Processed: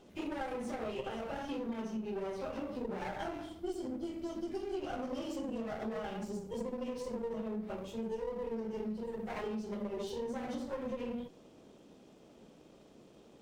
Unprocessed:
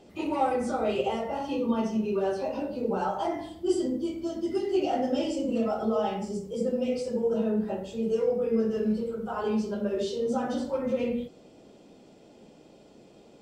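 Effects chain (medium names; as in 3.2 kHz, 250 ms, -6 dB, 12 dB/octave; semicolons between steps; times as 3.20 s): comb filter that takes the minimum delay 0.31 ms; compression, threshold -31 dBFS, peak gain reduction 11 dB; trim -4.5 dB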